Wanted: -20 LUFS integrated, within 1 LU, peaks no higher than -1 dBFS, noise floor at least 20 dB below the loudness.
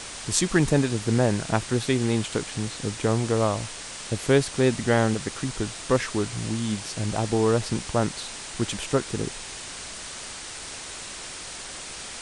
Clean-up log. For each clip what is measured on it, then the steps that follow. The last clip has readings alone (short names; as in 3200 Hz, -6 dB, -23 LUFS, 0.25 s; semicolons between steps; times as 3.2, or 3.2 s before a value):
noise floor -38 dBFS; noise floor target -47 dBFS; loudness -26.5 LUFS; peak -3.5 dBFS; loudness target -20.0 LUFS
-> denoiser 9 dB, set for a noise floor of -38 dBFS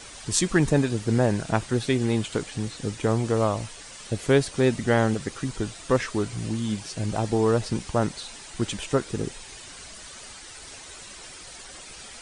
noise floor -43 dBFS; noise floor target -46 dBFS
-> denoiser 6 dB, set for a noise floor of -43 dBFS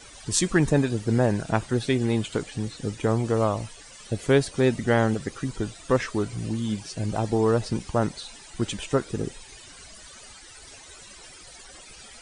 noise floor -47 dBFS; loudness -25.5 LUFS; peak -4.0 dBFS; loudness target -20.0 LUFS
-> gain +5.5 dB; limiter -1 dBFS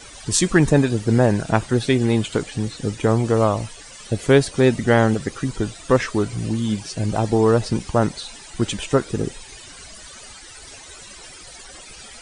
loudness -20.0 LUFS; peak -1.0 dBFS; noise floor -41 dBFS